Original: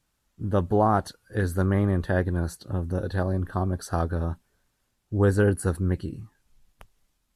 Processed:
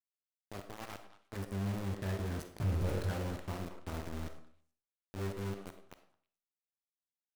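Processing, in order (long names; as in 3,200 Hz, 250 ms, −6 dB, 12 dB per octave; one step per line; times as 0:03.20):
source passing by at 0:02.75, 12 m/s, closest 1.6 metres
in parallel at −1 dB: downward compressor 6 to 1, threshold −42 dBFS, peak gain reduction 17 dB
on the sum: low-shelf EQ 190 Hz +9 dB
resonators tuned to a chord C2 minor, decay 0.33 s
centre clipping without the shift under −44 dBFS
echo through a band-pass that steps 107 ms, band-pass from 430 Hz, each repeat 1.4 octaves, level −5 dB
leveller curve on the samples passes 3
on a send at −8.5 dB: convolution reverb RT60 0.50 s, pre-delay 5 ms
on the sum: level −5 dB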